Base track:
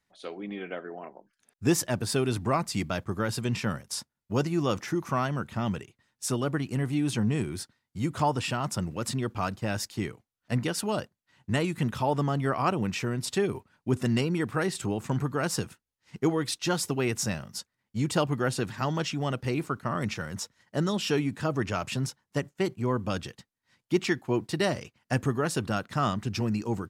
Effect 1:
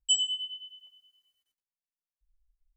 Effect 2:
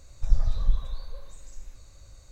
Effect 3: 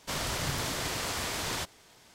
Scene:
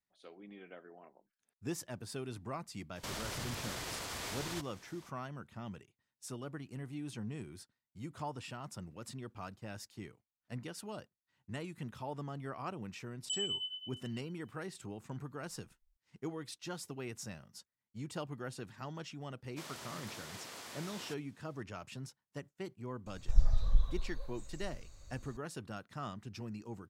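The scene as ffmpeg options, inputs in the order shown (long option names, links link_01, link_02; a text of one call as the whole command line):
ffmpeg -i bed.wav -i cue0.wav -i cue1.wav -i cue2.wav -filter_complex "[3:a]asplit=2[link_01][link_02];[0:a]volume=-15.5dB[link_03];[link_01]alimiter=level_in=6dB:limit=-24dB:level=0:latency=1:release=71,volume=-6dB[link_04];[1:a]acompressor=threshold=-30dB:ratio=6:attack=3.2:release=140:knee=1:detection=peak[link_05];[link_02]highpass=180[link_06];[link_04]atrim=end=2.14,asetpts=PTS-STARTPTS,volume=-2.5dB,afade=type=in:duration=0.004:curve=hsin,afade=type=out:start_time=2.136:duration=0.004:curve=hsin,adelay=2960[link_07];[link_05]atrim=end=2.76,asetpts=PTS-STARTPTS,volume=-3.5dB,afade=type=in:duration=0.004:curve=hsin,afade=type=out:start_time=2.756:duration=0.004:curve=hsin,adelay=13210[link_08];[link_06]atrim=end=2.14,asetpts=PTS-STARTPTS,volume=-14.5dB,afade=type=in:duration=0.004:curve=hsin,afade=type=out:start_time=2.136:duration=0.004:curve=hsin,adelay=19490[link_09];[2:a]atrim=end=2.31,asetpts=PTS-STARTPTS,volume=-4.5dB,afade=type=in:duration=0.004:curve=hsin,afade=type=out:start_time=2.306:duration=0.004:curve=hsin,adelay=23060[link_10];[link_03][link_07][link_08][link_09][link_10]amix=inputs=5:normalize=0" out.wav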